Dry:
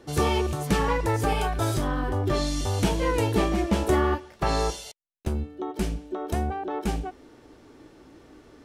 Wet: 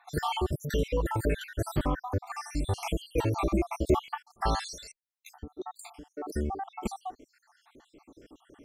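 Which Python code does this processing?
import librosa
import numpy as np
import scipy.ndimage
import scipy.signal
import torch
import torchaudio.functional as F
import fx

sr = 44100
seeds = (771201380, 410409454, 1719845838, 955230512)

y = fx.spec_dropout(x, sr, seeds[0], share_pct=69)
y = fx.peak_eq(y, sr, hz=fx.steps((0.0, 5300.0), (4.08, 420.0), (5.4, 92.0)), db=-4.5, octaves=1.6)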